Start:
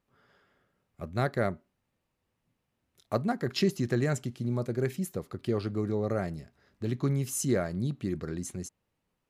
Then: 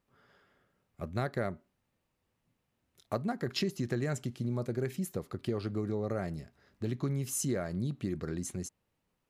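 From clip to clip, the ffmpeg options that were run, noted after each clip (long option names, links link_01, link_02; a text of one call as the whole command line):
ffmpeg -i in.wav -af "acompressor=threshold=-30dB:ratio=3" out.wav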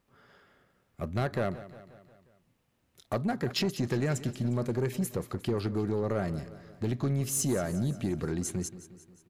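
ffmpeg -i in.wav -af "asoftclip=type=tanh:threshold=-27dB,aecho=1:1:178|356|534|712|890:0.168|0.094|0.0526|0.0295|0.0165,volume=5.5dB" out.wav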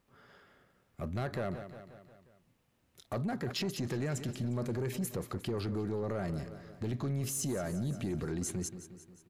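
ffmpeg -i in.wav -af "alimiter=level_in=4.5dB:limit=-24dB:level=0:latency=1:release=13,volume=-4.5dB" out.wav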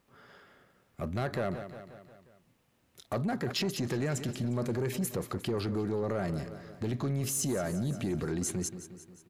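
ffmpeg -i in.wav -af "lowshelf=frequency=100:gain=-5.5,volume=4dB" out.wav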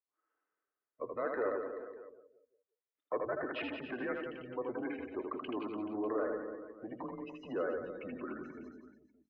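ffmpeg -i in.wav -af "afftdn=noise_reduction=32:noise_floor=-40,aecho=1:1:80|176|291.2|429.4|595.3:0.631|0.398|0.251|0.158|0.1,highpass=frequency=480:width_type=q:width=0.5412,highpass=frequency=480:width_type=q:width=1.307,lowpass=frequency=2700:width_type=q:width=0.5176,lowpass=frequency=2700:width_type=q:width=0.7071,lowpass=frequency=2700:width_type=q:width=1.932,afreqshift=-110" out.wav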